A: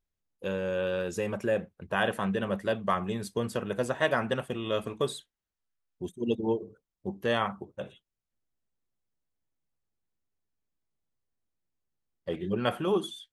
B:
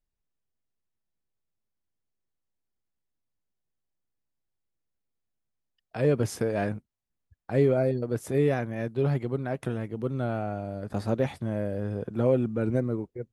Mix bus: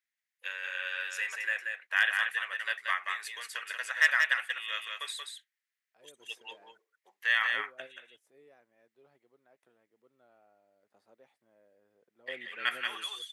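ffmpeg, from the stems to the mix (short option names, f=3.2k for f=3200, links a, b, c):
-filter_complex "[0:a]highpass=f=1.9k:t=q:w=4.6,asoftclip=type=hard:threshold=-13.5dB,volume=-1dB,asplit=3[a][b][c];[b]volume=-4.5dB[d];[1:a]volume=-18.5dB[e];[c]apad=whole_len=587757[f];[e][f]sidechaingate=range=-12dB:threshold=-47dB:ratio=16:detection=peak[g];[d]aecho=0:1:182:1[h];[a][g][h]amix=inputs=3:normalize=0,highpass=490"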